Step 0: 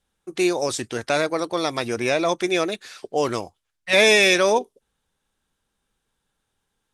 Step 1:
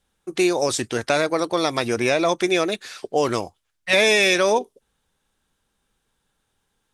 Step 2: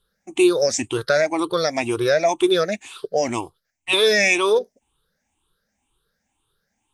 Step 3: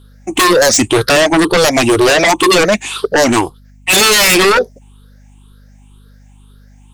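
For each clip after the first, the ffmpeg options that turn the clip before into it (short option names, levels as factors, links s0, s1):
-af "acompressor=threshold=0.112:ratio=2.5,volume=1.5"
-af "afftfilt=real='re*pow(10,19/40*sin(2*PI*(0.63*log(max(b,1)*sr/1024/100)/log(2)-(2)*(pts-256)/sr)))':imag='im*pow(10,19/40*sin(2*PI*(0.63*log(max(b,1)*sr/1024/100)/log(2)-(2)*(pts-256)/sr)))':win_size=1024:overlap=0.75,volume=0.631"
-af "aeval=exprs='0.631*sin(PI/2*5.62*val(0)/0.631)':c=same,aeval=exprs='val(0)+0.0112*(sin(2*PI*50*n/s)+sin(2*PI*2*50*n/s)/2+sin(2*PI*3*50*n/s)/3+sin(2*PI*4*50*n/s)/4+sin(2*PI*5*50*n/s)/5)':c=same,volume=0.794"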